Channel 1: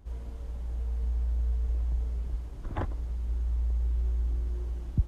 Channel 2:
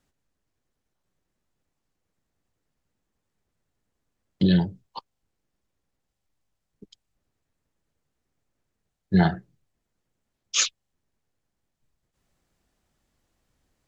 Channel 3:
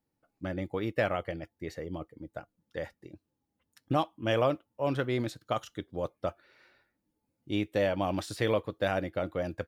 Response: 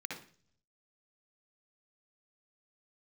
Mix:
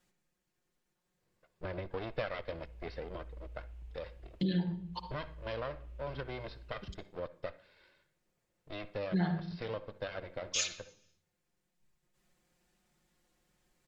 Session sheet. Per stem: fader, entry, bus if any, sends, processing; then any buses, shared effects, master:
-19.5 dB, 1.90 s, no send, bell 2600 Hz +13.5 dB 0.77 oct
-5.0 dB, 0.00 s, send -4.5 dB, comb 5.6 ms, depth 85%
+2.5 dB, 1.20 s, send -20 dB, minimum comb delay 1.9 ms; steep low-pass 5300 Hz 96 dB/oct; auto duck -7 dB, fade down 1.80 s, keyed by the second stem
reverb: on, RT60 0.45 s, pre-delay 57 ms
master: compressor 2:1, threshold -39 dBFS, peak gain reduction 14 dB

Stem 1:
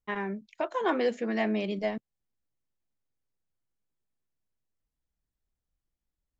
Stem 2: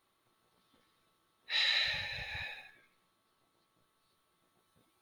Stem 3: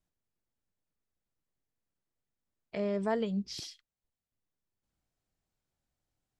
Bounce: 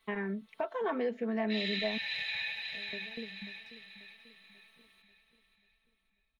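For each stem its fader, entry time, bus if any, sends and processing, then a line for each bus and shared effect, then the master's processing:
0.0 dB, 0.00 s, no send, no echo send, LPF 2700 Hz 12 dB/oct
-1.5 dB, 0.00 s, no send, echo send -8.5 dB, limiter -28.5 dBFS, peak gain reduction 8 dB; HPF 120 Hz; band shelf 2700 Hz +9.5 dB 1.3 oct
-15.5 dB, 0.00 s, no send, echo send -14.5 dB, tilt shelf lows +10 dB, about 860 Hz; notches 50/100/150/200 Hz; dB-ramp tremolo decaying 4.1 Hz, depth 27 dB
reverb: off
echo: feedback echo 0.539 s, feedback 47%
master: comb 4.5 ms, depth 70%; compressor 2:1, threshold -36 dBFS, peak gain reduction 9 dB

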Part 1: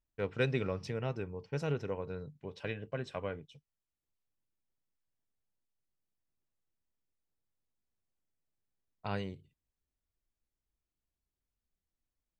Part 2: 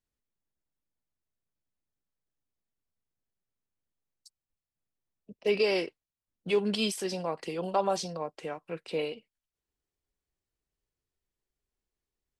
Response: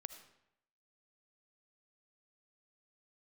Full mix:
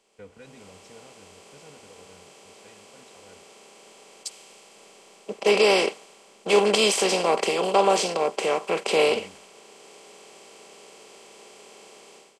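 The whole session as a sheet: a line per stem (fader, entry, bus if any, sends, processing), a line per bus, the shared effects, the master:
-1.0 dB, 0.00 s, send -9.5 dB, comb 4.1 ms, depth 75%; limiter -27.5 dBFS, peak gain reduction 9.5 dB; auto duck -13 dB, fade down 0.75 s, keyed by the second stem
-6.0 dB, 0.00 s, no send, per-bin compression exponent 0.4; AGC gain up to 14 dB; tone controls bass -12 dB, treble -7 dB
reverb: on, RT60 0.80 s, pre-delay 35 ms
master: bell 7300 Hz +11.5 dB 0.48 oct; three-band expander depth 40%

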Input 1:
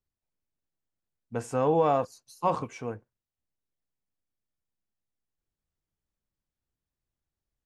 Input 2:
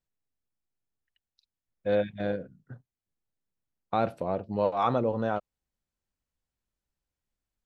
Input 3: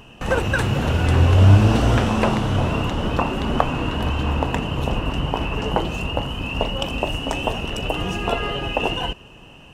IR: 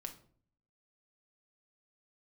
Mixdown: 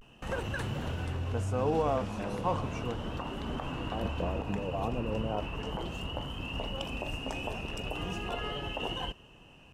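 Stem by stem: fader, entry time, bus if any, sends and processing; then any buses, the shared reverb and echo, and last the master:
-3.5 dB, 0.00 s, no send, dry
-3.5 dB, 0.00 s, no send, treble ducked by the level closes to 440 Hz, closed at -22 dBFS; negative-ratio compressor -33 dBFS
-15.0 dB, 0.00 s, no send, limiter -11 dBFS, peak gain reduction 9 dB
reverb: off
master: vocal rider within 4 dB 2 s; vibrato 0.37 Hz 51 cents

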